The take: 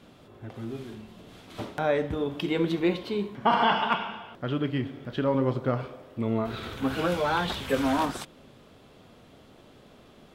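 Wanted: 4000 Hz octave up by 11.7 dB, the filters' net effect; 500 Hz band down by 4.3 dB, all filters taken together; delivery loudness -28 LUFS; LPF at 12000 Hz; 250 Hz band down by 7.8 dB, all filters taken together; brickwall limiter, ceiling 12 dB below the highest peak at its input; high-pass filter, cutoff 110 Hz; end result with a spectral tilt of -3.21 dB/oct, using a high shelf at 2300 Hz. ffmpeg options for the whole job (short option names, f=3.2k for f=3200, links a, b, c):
-af "highpass=110,lowpass=12k,equalizer=f=250:t=o:g=-9,equalizer=f=500:t=o:g=-3.5,highshelf=f=2.3k:g=7.5,equalizer=f=4k:t=o:g=9,volume=1dB,alimiter=limit=-16dB:level=0:latency=1"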